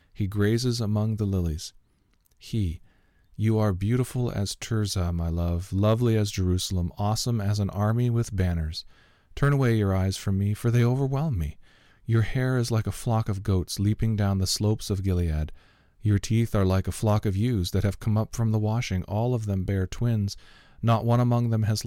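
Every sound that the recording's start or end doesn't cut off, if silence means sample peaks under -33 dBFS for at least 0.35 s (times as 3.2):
2.47–2.75
3.39–8.8
9.37–11.51
12.08–15.49
16.05–20.33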